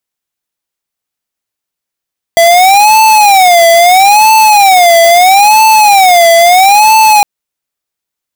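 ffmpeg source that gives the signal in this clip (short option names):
-f lavfi -i "aevalsrc='0.631*(2*lt(mod((775*t-104/(2*PI*0.76)*sin(2*PI*0.76*t)),1),0.5)-1)':d=4.86:s=44100"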